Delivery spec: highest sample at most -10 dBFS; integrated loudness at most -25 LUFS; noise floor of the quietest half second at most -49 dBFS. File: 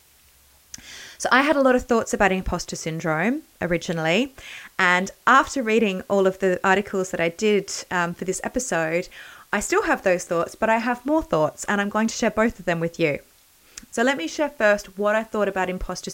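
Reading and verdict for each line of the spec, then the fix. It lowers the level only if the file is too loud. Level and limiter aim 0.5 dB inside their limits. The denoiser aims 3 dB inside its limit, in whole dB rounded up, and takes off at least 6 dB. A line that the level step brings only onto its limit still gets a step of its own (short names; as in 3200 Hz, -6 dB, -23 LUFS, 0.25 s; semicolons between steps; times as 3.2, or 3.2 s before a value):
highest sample -4.5 dBFS: fail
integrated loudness -22.0 LUFS: fail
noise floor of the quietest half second -55 dBFS: OK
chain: gain -3.5 dB; limiter -10.5 dBFS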